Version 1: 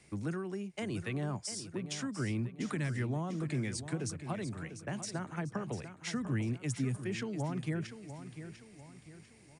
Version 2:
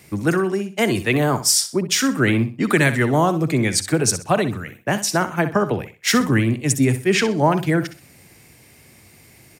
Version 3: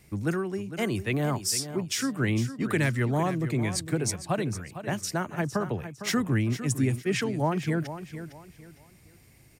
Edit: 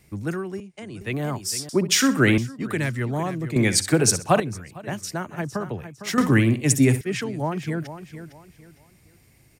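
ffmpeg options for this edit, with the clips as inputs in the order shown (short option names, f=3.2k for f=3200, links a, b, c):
-filter_complex "[1:a]asplit=3[a][b][c];[2:a]asplit=5[d][e][f][g][h];[d]atrim=end=0.602[i];[0:a]atrim=start=0.598:end=1.012[j];[e]atrim=start=1.008:end=1.692[k];[a]atrim=start=1.688:end=2.382[l];[f]atrim=start=2.378:end=3.562[m];[b]atrim=start=3.558:end=4.402[n];[g]atrim=start=4.398:end=6.182[o];[c]atrim=start=6.178:end=7.012[p];[h]atrim=start=7.008[q];[i][j]acrossfade=d=0.004:c1=hsin:c2=hsin[r];[r][k]acrossfade=d=0.004:c1=hsin:c2=hsin[s];[s][l]acrossfade=d=0.004:c1=hsin:c2=hsin[t];[t][m]acrossfade=d=0.004:c1=hsin:c2=hsin[u];[u][n]acrossfade=d=0.004:c1=hsin:c2=hsin[v];[v][o]acrossfade=d=0.004:c1=hsin:c2=hsin[w];[w][p]acrossfade=d=0.004:c1=hsin:c2=hsin[x];[x][q]acrossfade=d=0.004:c1=hsin:c2=hsin"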